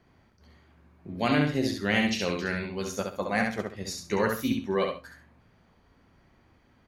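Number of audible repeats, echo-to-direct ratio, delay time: 2, -3.5 dB, 67 ms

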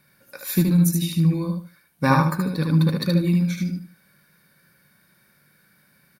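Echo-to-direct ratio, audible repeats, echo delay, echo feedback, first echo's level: -3.5 dB, 3, 75 ms, 23%, -3.5 dB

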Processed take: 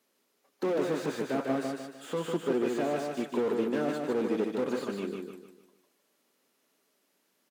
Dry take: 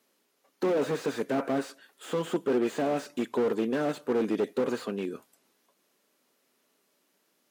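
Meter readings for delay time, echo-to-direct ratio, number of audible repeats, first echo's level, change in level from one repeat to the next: 151 ms, -3.5 dB, 4, -4.0 dB, -8.0 dB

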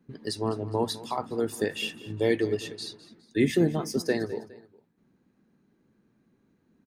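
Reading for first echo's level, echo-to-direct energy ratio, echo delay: -17.5 dB, -17.0 dB, 206 ms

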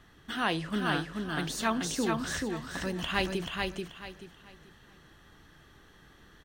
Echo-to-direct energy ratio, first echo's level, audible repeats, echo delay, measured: -3.0 dB, -3.5 dB, 3, 434 ms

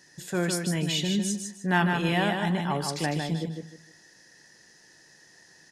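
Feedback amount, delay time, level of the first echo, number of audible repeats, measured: 27%, 153 ms, -5.0 dB, 3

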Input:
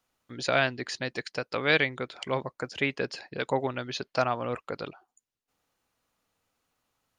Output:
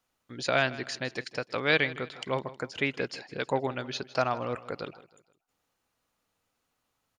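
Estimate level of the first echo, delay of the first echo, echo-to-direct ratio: -17.5 dB, 158 ms, -16.5 dB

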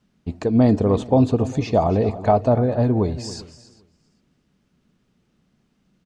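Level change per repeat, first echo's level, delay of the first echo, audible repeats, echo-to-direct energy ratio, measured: no regular repeats, -15.5 dB, 276 ms, 2, -14.5 dB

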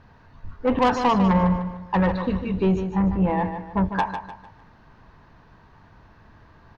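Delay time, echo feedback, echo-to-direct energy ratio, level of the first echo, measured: 150 ms, 37%, -8.0 dB, -8.5 dB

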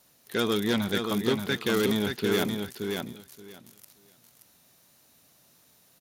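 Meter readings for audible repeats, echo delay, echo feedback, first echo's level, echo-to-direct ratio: 2, 576 ms, 16%, -5.0 dB, -5.0 dB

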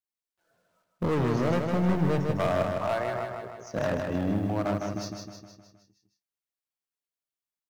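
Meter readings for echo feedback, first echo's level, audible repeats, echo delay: 54%, -4.5 dB, 6, 156 ms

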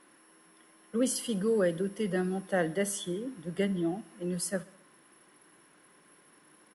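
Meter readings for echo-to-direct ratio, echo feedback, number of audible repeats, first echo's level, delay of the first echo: -19.5 dB, 56%, 3, -21.0 dB, 65 ms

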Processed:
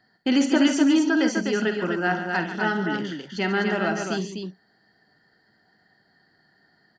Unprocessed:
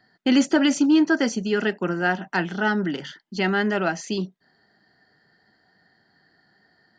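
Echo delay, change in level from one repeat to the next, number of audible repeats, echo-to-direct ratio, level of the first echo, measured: 50 ms, no regular repeats, 3, -3.0 dB, -11.5 dB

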